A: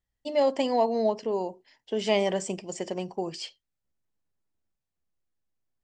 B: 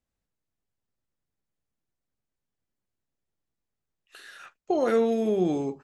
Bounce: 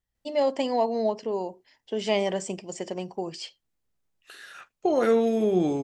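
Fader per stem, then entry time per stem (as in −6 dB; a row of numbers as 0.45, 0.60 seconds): −0.5, +1.5 decibels; 0.00, 0.15 seconds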